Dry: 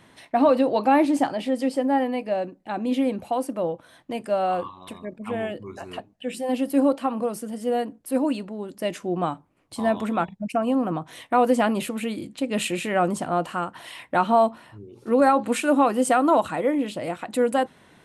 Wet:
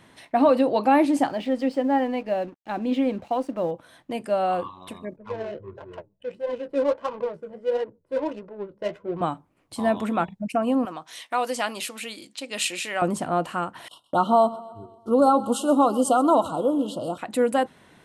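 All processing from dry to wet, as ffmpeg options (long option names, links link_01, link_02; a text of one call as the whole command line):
ffmpeg -i in.wav -filter_complex "[0:a]asettb=1/sr,asplit=3[link_01][link_02][link_03];[link_01]atrim=end=1.294[link_04];[link_02]atrim=start=1.29:end=3.71,asetpts=PTS-STARTPTS,afade=type=in:duration=0.004:curve=qsin,afade=type=out:start_time=2.416:duration=0.004:curve=qsin,lowpass=4900,aeval=exprs='sgn(val(0))*max(abs(val(0))-0.00266,0)':channel_layout=same[link_05];[link_03]atrim=start=3.706[link_06];[link_04][link_05]acrossfade=duration=0.004:curve1=hsin:curve2=qsin[link_07];[link_07][link_06]acrossfade=duration=0.004:curve1=qsin:curve2=hsin,asettb=1/sr,asplit=3[link_08][link_09][link_10];[link_08]atrim=end=5.164[link_11];[link_09]atrim=start=5.16:end=9.21,asetpts=PTS-STARTPTS,afade=type=in:duration=0.004:curve=qsin,afade=type=out:start_time=4.046:duration=0.004:curve=qsin,aecho=1:1:2:0.81,atrim=end_sample=178605,flanger=delay=6.3:depth=9.5:regen=43:speed=1.5:shape=triangular,adynamicsmooth=sensitivity=4:basefreq=610[link_12];[link_10]atrim=start=9.206[link_13];[link_11][link_12]acrossfade=duration=0.004:curve1=hsin:curve2=qsin[link_14];[link_14][link_13]acrossfade=duration=0.004:curve1=qsin:curve2=hsin,asettb=1/sr,asplit=3[link_15][link_16][link_17];[link_15]atrim=end=10.854[link_18];[link_16]atrim=start=10.85:end=13.02,asetpts=PTS-STARTPTS,afade=type=in:duration=0.004:curve=qsin,afade=type=out:start_time=2.166:duration=0.004:curve=qsin,highpass=frequency=1200:poles=1,equalizer=frequency=5200:width_type=o:width=1.1:gain=8.5[link_19];[link_17]atrim=start=13.016[link_20];[link_18][link_19]acrossfade=duration=0.004:curve1=hsin:curve2=qsin[link_21];[link_21][link_20]acrossfade=duration=0.004:curve1=qsin:curve2=hsin,asettb=1/sr,asplit=3[link_22][link_23][link_24];[link_22]atrim=end=13.884[link_25];[link_23]atrim=start=13.88:end=17.18,asetpts=PTS-STARTPTS,afade=type=in:duration=0.004:curve=qsin,afade=type=out:start_time=3.296:duration=0.004:curve=qsin,asuperstop=centerf=2000:order=20:qfactor=1.4,agate=range=-22dB:threshold=-43dB:ratio=16:release=100:detection=peak,aecho=1:1:129|258|387|516|645:0.119|0.0642|0.0347|0.0187|0.0101,atrim=end_sample=145530[link_26];[link_24]atrim=start=17.176[link_27];[link_25][link_26]acrossfade=duration=0.004:curve1=hsin:curve2=qsin[link_28];[link_28][link_27]acrossfade=duration=0.004:curve1=qsin:curve2=hsin" out.wav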